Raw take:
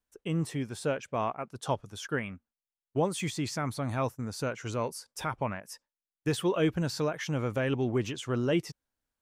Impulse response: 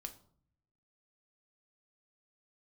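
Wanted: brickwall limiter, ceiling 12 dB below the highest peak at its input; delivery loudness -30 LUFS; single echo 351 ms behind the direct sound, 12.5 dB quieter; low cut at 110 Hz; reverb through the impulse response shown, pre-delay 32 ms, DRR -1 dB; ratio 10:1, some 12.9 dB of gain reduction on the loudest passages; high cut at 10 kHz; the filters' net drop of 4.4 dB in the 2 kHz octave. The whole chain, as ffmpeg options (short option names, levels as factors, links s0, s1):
-filter_complex "[0:a]highpass=110,lowpass=10000,equalizer=f=2000:t=o:g=-6,acompressor=threshold=0.0158:ratio=10,alimiter=level_in=3.35:limit=0.0631:level=0:latency=1,volume=0.299,aecho=1:1:351:0.237,asplit=2[s0][s1];[1:a]atrim=start_sample=2205,adelay=32[s2];[s1][s2]afir=irnorm=-1:irlink=0,volume=1.78[s3];[s0][s3]amix=inputs=2:normalize=0,volume=3.55"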